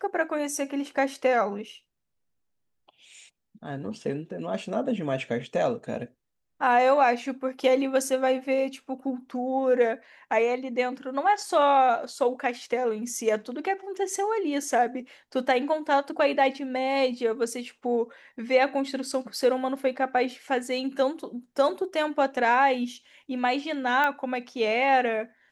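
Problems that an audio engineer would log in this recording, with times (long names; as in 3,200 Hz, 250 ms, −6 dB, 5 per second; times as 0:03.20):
0:24.04: click −14 dBFS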